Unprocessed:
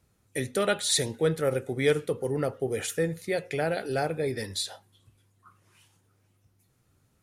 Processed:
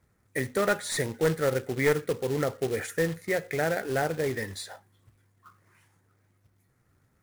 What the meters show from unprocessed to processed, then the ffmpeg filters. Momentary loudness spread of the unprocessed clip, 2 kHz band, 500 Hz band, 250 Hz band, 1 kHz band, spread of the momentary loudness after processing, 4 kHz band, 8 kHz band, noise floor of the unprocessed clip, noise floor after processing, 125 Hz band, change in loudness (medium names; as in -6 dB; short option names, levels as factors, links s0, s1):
7 LU, +3.0 dB, 0.0 dB, 0.0 dB, +1.5 dB, 8 LU, -7.0 dB, -5.0 dB, -69 dBFS, -69 dBFS, 0.0 dB, 0.0 dB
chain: -af "aeval=exprs='clip(val(0),-1,0.0944)':c=same,highshelf=f=2400:t=q:w=3:g=-6,acrusher=bits=3:mode=log:mix=0:aa=0.000001"